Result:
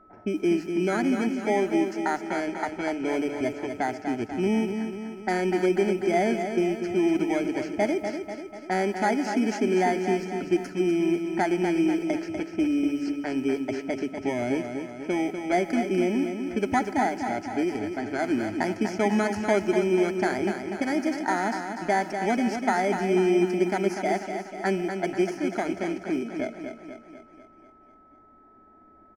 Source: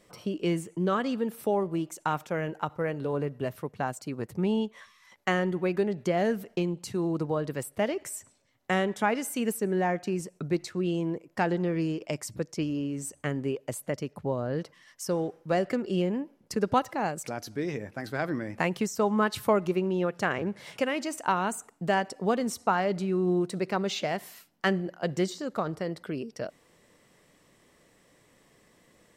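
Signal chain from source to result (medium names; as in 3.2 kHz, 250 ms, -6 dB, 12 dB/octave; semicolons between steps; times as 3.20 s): bit-reversed sample order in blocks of 16 samples; low-pass 6.1 kHz 24 dB/octave; in parallel at +3 dB: peak limiter -21 dBFS, peak gain reduction 9 dB; on the sum: static phaser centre 750 Hz, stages 8; added noise blue -64 dBFS; level-controlled noise filter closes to 1 kHz, open at -23.5 dBFS; feedback delay 245 ms, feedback 55%, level -7 dB; on a send at -19 dB: reverberation RT60 1.7 s, pre-delay 89 ms; on the sum: whistle 1.3 kHz -54 dBFS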